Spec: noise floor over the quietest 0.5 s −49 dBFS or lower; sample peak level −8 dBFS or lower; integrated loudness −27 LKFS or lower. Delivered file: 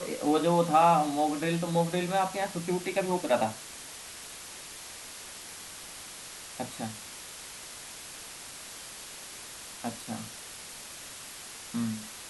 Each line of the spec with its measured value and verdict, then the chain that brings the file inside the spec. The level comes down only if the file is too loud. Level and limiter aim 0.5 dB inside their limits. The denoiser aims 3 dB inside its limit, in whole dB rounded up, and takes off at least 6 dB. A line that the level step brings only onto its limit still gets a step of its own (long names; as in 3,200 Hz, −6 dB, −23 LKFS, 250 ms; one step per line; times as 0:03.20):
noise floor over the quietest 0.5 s −44 dBFS: out of spec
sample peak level −10.5 dBFS: in spec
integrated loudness −32.0 LKFS: in spec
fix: broadband denoise 8 dB, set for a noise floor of −44 dBFS